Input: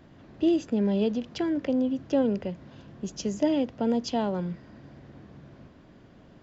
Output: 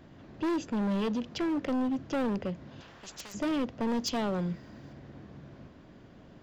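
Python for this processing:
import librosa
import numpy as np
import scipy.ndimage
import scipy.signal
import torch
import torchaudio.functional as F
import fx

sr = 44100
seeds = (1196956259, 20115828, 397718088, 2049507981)

y = fx.high_shelf(x, sr, hz=6300.0, db=11.5, at=(3.88, 4.93))
y = np.clip(y, -10.0 ** (-27.0 / 20.0), 10.0 ** (-27.0 / 20.0))
y = fx.spectral_comp(y, sr, ratio=4.0, at=(2.8, 3.34), fade=0.02)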